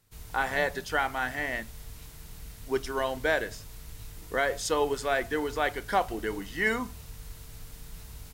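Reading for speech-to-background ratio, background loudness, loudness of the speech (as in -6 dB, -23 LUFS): 16.0 dB, -46.0 LUFS, -30.0 LUFS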